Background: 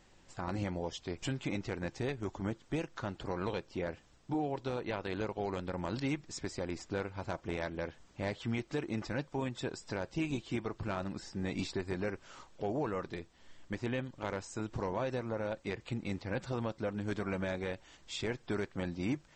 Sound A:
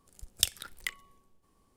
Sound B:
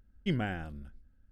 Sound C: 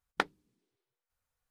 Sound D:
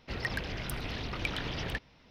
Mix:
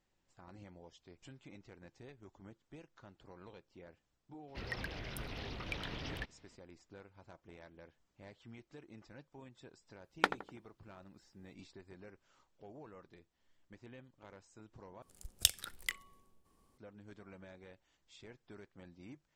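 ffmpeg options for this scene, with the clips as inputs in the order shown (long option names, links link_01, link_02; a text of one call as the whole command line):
ffmpeg -i bed.wav -i cue0.wav -i cue1.wav -i cue2.wav -i cue3.wav -filter_complex "[0:a]volume=-18.5dB[link_01];[3:a]asplit=2[link_02][link_03];[link_03]adelay=83,lowpass=frequency=1200:poles=1,volume=-8.5dB,asplit=2[link_04][link_05];[link_05]adelay=83,lowpass=frequency=1200:poles=1,volume=0.46,asplit=2[link_06][link_07];[link_07]adelay=83,lowpass=frequency=1200:poles=1,volume=0.46,asplit=2[link_08][link_09];[link_09]adelay=83,lowpass=frequency=1200:poles=1,volume=0.46,asplit=2[link_10][link_11];[link_11]adelay=83,lowpass=frequency=1200:poles=1,volume=0.46[link_12];[link_02][link_04][link_06][link_08][link_10][link_12]amix=inputs=6:normalize=0[link_13];[link_01]asplit=2[link_14][link_15];[link_14]atrim=end=15.024[link_16];[1:a]atrim=end=1.76,asetpts=PTS-STARTPTS,volume=-2.5dB[link_17];[link_15]atrim=start=16.776[link_18];[4:a]atrim=end=2.1,asetpts=PTS-STARTPTS,volume=-7.5dB,afade=type=in:duration=0.02,afade=type=out:start_time=2.08:duration=0.02,adelay=4470[link_19];[link_13]atrim=end=1.5,asetpts=PTS-STARTPTS,afade=type=in:duration=0.004:curve=hsin,afade=type=out:start_time=1.496:duration=0.004:curve=hsin,adelay=10040[link_20];[link_16][link_17]acrossfade=duration=0.004:curve1=hsin:curve2=hsin[link_21];[link_21][link_18]acrossfade=duration=0.004:curve1=hsin:curve2=hsin[link_22];[link_22][link_19][link_20]amix=inputs=3:normalize=0" out.wav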